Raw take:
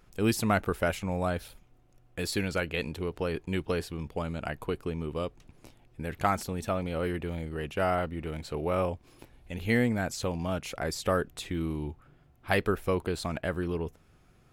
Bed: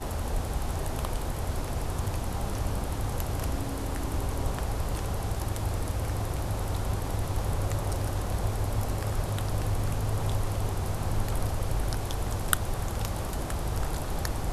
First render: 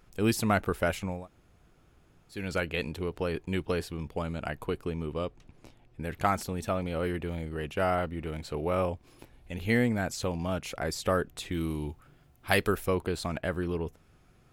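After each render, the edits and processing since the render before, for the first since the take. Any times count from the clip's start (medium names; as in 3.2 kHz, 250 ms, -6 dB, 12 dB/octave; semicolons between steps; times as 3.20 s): 1.16–2.41 s: room tone, crossfade 0.24 s; 5.12–6.03 s: treble shelf 9.6 kHz -11 dB; 11.52–12.86 s: treble shelf 3.5 kHz +9.5 dB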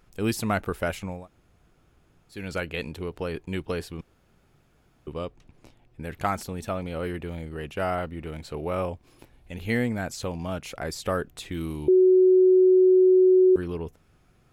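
4.01–5.07 s: room tone; 11.88–13.56 s: bleep 371 Hz -13.5 dBFS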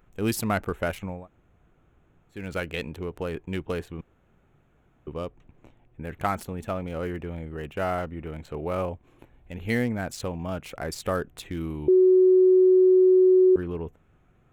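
local Wiener filter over 9 samples; treble shelf 8.7 kHz +9 dB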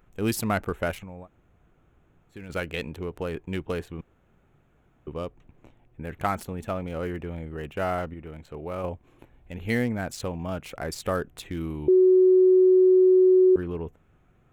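1.00–2.50 s: compression, threshold -36 dBFS; 8.14–8.84 s: gain -4.5 dB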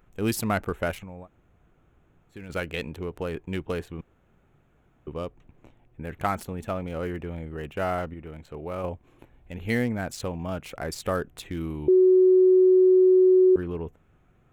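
no audible change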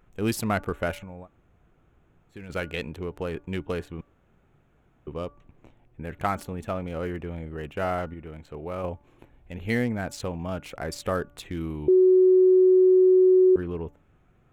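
treble shelf 11 kHz -5.5 dB; de-hum 288.8 Hz, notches 5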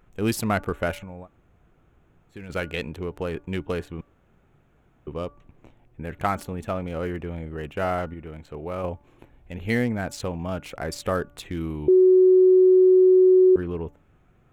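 trim +2 dB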